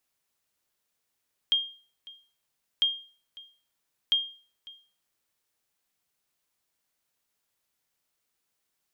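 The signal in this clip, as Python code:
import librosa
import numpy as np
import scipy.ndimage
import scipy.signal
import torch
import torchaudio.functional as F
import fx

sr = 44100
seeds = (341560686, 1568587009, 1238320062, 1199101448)

y = fx.sonar_ping(sr, hz=3220.0, decay_s=0.4, every_s=1.3, pings=3, echo_s=0.55, echo_db=-22.0, level_db=-16.5)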